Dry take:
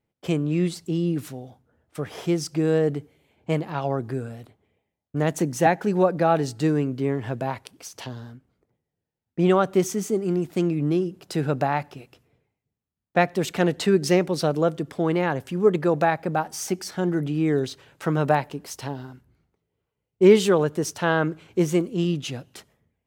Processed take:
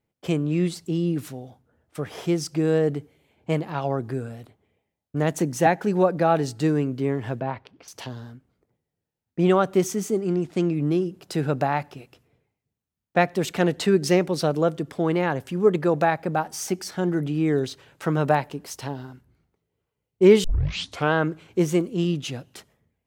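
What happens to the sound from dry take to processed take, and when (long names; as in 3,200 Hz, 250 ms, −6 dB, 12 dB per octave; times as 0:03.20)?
0:07.40–0:07.88: high-frequency loss of the air 260 metres
0:10.21–0:10.75: low-pass filter 8,000 Hz
0:20.44: tape start 0.69 s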